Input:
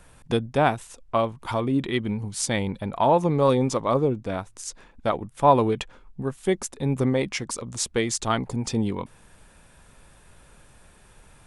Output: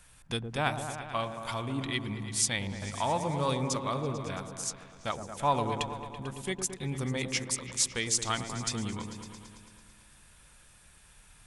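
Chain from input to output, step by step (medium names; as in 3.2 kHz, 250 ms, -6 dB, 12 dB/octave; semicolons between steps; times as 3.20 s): amplifier tone stack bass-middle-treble 5-5-5; delay with an opening low-pass 111 ms, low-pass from 750 Hz, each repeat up 1 oct, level -6 dB; trim +6.5 dB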